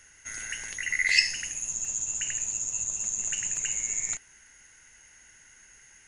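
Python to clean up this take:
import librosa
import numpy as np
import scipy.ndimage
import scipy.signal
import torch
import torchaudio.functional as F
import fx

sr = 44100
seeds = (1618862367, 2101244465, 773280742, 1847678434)

y = fx.fix_interpolate(x, sr, at_s=(0.92, 1.85, 3.56), length_ms=1.9)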